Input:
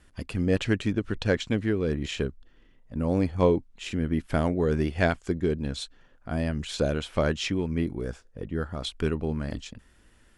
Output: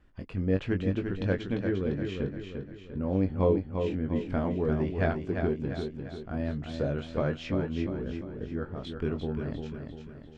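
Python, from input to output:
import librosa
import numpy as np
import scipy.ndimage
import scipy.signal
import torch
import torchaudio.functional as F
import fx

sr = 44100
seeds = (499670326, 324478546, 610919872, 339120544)

y = fx.spacing_loss(x, sr, db_at_10k=25)
y = fx.doubler(y, sr, ms=21.0, db=-6.5)
y = fx.echo_feedback(y, sr, ms=347, feedback_pct=47, wet_db=-6.0)
y = y * librosa.db_to_amplitude(-4.0)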